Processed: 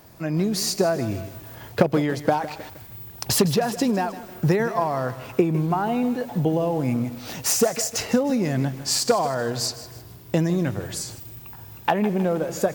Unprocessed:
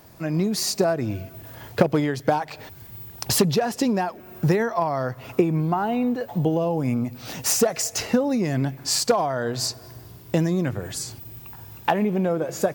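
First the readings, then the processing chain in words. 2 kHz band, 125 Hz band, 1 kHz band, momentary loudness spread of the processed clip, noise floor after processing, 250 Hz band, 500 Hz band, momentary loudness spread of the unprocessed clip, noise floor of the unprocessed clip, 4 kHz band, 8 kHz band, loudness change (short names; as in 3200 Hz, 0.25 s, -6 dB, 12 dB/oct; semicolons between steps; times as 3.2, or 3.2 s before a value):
0.0 dB, 0.0 dB, 0.0 dB, 16 LU, -43 dBFS, 0.0 dB, 0.0 dB, 16 LU, -45 dBFS, 0.0 dB, 0.0 dB, 0.0 dB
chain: lo-fi delay 0.157 s, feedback 55%, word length 6-bit, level -13.5 dB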